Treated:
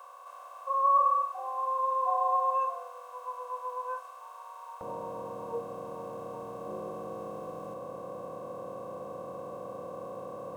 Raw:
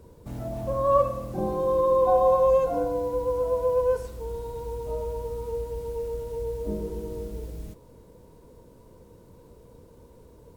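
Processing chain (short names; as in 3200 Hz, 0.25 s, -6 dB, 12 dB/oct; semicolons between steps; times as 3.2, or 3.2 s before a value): per-bin compression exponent 0.2; spectral noise reduction 18 dB; HPF 940 Hz 24 dB/oct, from 4.81 s 110 Hz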